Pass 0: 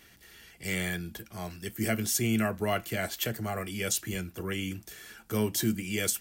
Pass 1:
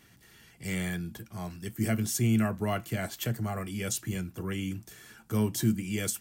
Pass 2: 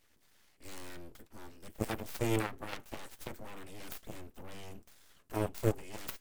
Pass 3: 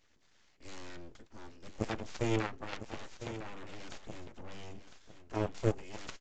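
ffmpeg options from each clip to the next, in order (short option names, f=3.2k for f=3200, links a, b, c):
-af "equalizer=f=125:t=o:w=1:g=11,equalizer=f=250:t=o:w=1:g=5,equalizer=f=1k:t=o:w=1:g=5,equalizer=f=8k:t=o:w=1:g=3,volume=-5.5dB"
-af "aeval=exprs='abs(val(0))':c=same,aeval=exprs='0.188*(cos(1*acos(clip(val(0)/0.188,-1,1)))-cos(1*PI/2))+0.0668*(cos(3*acos(clip(val(0)/0.188,-1,1)))-cos(3*PI/2))+0.0119*(cos(6*acos(clip(val(0)/0.188,-1,1)))-cos(6*PI/2))+0.00668*(cos(7*acos(clip(val(0)/0.188,-1,1)))-cos(7*PI/2))+0.0106*(cos(8*acos(clip(val(0)/0.188,-1,1)))-cos(8*PI/2))':c=same,volume=1dB"
-filter_complex "[0:a]asplit=2[a][b];[b]aecho=0:1:1004:0.266[c];[a][c]amix=inputs=2:normalize=0,aresample=16000,aresample=44100"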